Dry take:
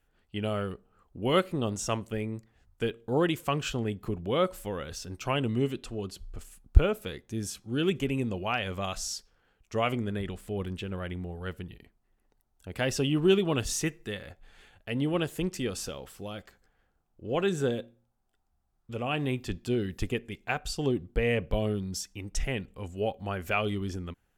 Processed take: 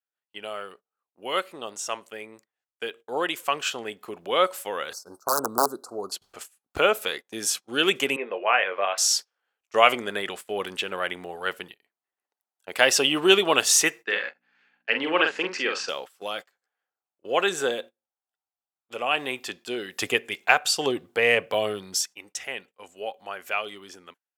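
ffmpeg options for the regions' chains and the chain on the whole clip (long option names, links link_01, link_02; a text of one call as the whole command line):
ffmpeg -i in.wav -filter_complex "[0:a]asettb=1/sr,asplit=3[link_01][link_02][link_03];[link_01]atrim=end=4.934[link_04];[link_02]atrim=start=4.93:end=6.12,asetpts=PTS-STARTPTS,afade=type=in:duration=0.004:curve=qsin,afade=type=out:start_time=1.186:duration=0.004:curve=qsin,aeval=exprs='(mod(9.44*val(0)+1,2)-1)/9.44':channel_layout=same,asuperstop=centerf=2500:order=12:qfactor=0.85,equalizer=frequency=5300:width_type=o:width=1.7:gain=-6[link_05];[link_03]atrim=start=6.116[link_06];[link_04][link_05]acrossfade=duration=0.004:curve1=hsin:curve2=qsin[link_07];[link_07][link_06]acrossfade=duration=0.004:curve1=qsin:curve2=hsin,asettb=1/sr,asplit=3[link_08][link_09][link_10];[link_08]atrim=end=8.164[link_11];[link_09]atrim=start=8.16:end=8.98,asetpts=PTS-STARTPTS,afade=type=in:duration=0.004:curve=qsin,afade=type=out:start_time=0.816:duration=0.004:curve=qsin,highpass=440,equalizer=frequency=470:width_type=q:width=4:gain=4,equalizer=frequency=810:width_type=q:width=4:gain=-6,equalizer=frequency=1300:width_type=q:width=4:gain=-4,lowpass=frequency=2300:width=0.5412,lowpass=frequency=2300:width=1.3066,asplit=2[link_12][link_13];[link_13]adelay=20,volume=-8.5dB[link_14];[link_12][link_14]amix=inputs=2:normalize=0,atrim=end_sample=36162[link_15];[link_10]atrim=start=8.976[link_16];[link_11][link_15]acrossfade=duration=0.004:curve1=hsin:curve2=qsin[link_17];[link_17][link_16]acrossfade=duration=0.004:curve1=qsin:curve2=hsin,asettb=1/sr,asplit=3[link_18][link_19][link_20];[link_18]atrim=end=14.044[link_21];[link_19]atrim=start=14.04:end=15.89,asetpts=PTS-STARTPTS,afade=type=in:duration=0.004:curve=qsin,afade=type=out:start_time=1.846:duration=0.004:curve=qsin,aeval=exprs='val(0)+0.00708*(sin(2*PI*60*n/s)+sin(2*PI*2*60*n/s)/2+sin(2*PI*3*60*n/s)/3+sin(2*PI*4*60*n/s)/4+sin(2*PI*5*60*n/s)/5)':channel_layout=same,highpass=250,equalizer=frequency=660:width_type=q:width=4:gain=-6,equalizer=frequency=1600:width_type=q:width=4:gain=5,equalizer=frequency=2400:width_type=q:width=4:gain=3,equalizer=frequency=3500:width_type=q:width=4:gain=-8,lowpass=frequency=4900:width=0.5412,lowpass=frequency=4900:width=1.3066,asplit=2[link_22][link_23];[link_23]adelay=45,volume=-5.5dB[link_24];[link_22][link_24]amix=inputs=2:normalize=0,atrim=end_sample=81585[link_25];[link_20]atrim=start=15.886[link_26];[link_21][link_25]acrossfade=duration=0.004:curve1=hsin:curve2=qsin[link_27];[link_27][link_26]acrossfade=duration=0.004:curve1=qsin:curve2=hsin,asettb=1/sr,asplit=3[link_28][link_29][link_30];[link_28]atrim=end=19.984[link_31];[link_29]atrim=start=19.98:end=22.06,asetpts=PTS-STARTPTS,afade=type=in:duration=0.004:curve=qsin,afade=type=out:start_time=2.076:duration=0.004:curve=qsin,highpass=46,equalizer=frequency=110:width_type=o:width=0.59:gain=8,acontrast=59[link_32];[link_30]atrim=start=22.056[link_33];[link_31][link_32]acrossfade=duration=0.004:curve1=hsin:curve2=qsin[link_34];[link_34][link_33]acrossfade=duration=0.004:curve1=qsin:curve2=hsin,agate=range=-22dB:threshold=-42dB:ratio=16:detection=peak,highpass=660,dynaudnorm=framelen=940:gausssize=9:maxgain=14dB,volume=1.5dB" out.wav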